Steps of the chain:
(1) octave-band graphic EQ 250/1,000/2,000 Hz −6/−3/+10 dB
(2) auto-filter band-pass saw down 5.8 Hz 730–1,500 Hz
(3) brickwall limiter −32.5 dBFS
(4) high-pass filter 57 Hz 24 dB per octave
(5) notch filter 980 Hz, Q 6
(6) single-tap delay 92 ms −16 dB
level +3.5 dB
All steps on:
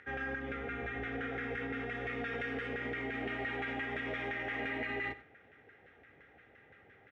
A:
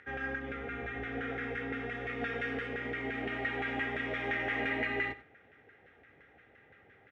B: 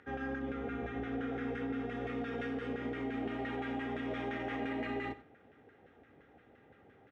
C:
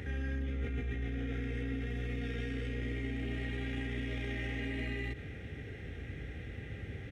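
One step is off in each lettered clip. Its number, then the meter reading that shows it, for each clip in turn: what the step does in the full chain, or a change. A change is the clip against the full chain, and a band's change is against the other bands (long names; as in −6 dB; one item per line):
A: 3, change in crest factor +3.0 dB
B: 1, 2 kHz band −7.5 dB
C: 2, 125 Hz band +14.0 dB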